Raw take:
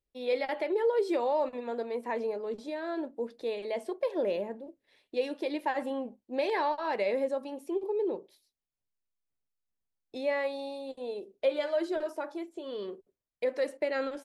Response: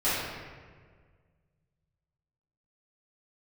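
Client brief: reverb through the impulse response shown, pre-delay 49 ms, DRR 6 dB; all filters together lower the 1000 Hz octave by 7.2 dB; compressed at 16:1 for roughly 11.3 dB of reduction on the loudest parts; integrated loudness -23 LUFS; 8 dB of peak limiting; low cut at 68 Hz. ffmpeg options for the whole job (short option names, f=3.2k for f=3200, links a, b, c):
-filter_complex "[0:a]highpass=68,equalizer=f=1k:t=o:g=-9,acompressor=threshold=-36dB:ratio=16,alimiter=level_in=11dB:limit=-24dB:level=0:latency=1,volume=-11dB,asplit=2[a][b];[1:a]atrim=start_sample=2205,adelay=49[c];[b][c]afir=irnorm=-1:irlink=0,volume=-19dB[d];[a][d]amix=inputs=2:normalize=0,volume=19.5dB"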